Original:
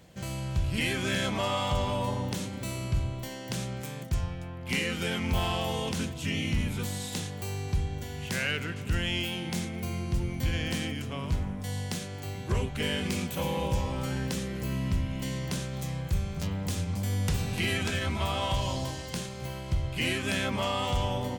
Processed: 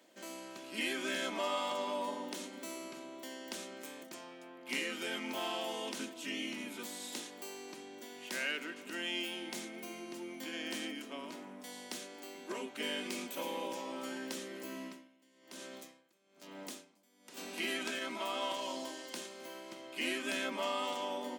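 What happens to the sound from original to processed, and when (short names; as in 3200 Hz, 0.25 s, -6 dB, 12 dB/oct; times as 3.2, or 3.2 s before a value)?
14.8–17.37 dB-linear tremolo 1.1 Hz, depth 26 dB
whole clip: steep high-pass 240 Hz 36 dB/oct; comb 3.2 ms, depth 35%; gain -6.5 dB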